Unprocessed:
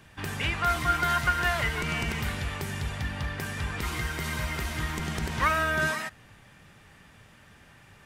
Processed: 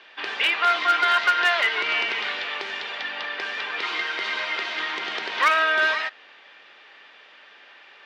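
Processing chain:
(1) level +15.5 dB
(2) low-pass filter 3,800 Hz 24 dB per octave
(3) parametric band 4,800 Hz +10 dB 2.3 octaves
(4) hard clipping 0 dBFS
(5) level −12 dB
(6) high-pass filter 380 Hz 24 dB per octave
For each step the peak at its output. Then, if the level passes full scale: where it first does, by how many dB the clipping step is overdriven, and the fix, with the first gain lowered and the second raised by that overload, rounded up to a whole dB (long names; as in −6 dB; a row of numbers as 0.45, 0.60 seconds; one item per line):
+3.5, +3.5, +6.0, 0.0, −12.0, −8.0 dBFS
step 1, 6.0 dB
step 1 +9.5 dB, step 5 −6 dB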